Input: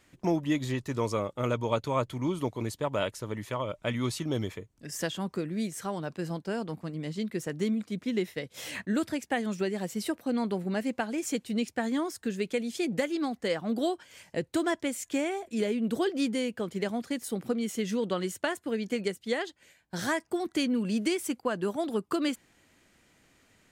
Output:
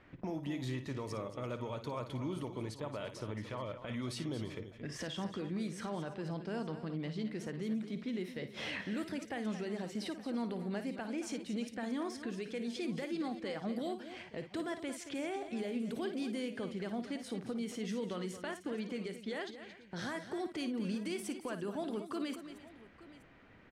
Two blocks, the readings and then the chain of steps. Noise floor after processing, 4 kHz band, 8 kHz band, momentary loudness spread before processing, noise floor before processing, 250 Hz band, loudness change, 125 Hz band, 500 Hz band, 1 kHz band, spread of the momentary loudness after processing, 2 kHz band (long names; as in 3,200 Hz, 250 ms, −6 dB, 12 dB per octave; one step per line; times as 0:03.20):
−56 dBFS, −8.0 dB, −11.0 dB, 6 LU, −66 dBFS, −7.5 dB, −8.5 dB, −6.5 dB, −9.5 dB, −9.5 dB, 4 LU, −8.5 dB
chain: low-pass that shuts in the quiet parts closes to 2,000 Hz, open at −24.5 dBFS
parametric band 7,100 Hz −6.5 dB 0.31 octaves
downward compressor 3 to 1, threshold −42 dBFS, peak gain reduction 14.5 dB
brickwall limiter −35.5 dBFS, peak gain reduction 9 dB
on a send: multi-tap delay 55/225/341/873 ms −10.5/−11.5/−19.5/−19 dB
on the sum: level +4.5 dB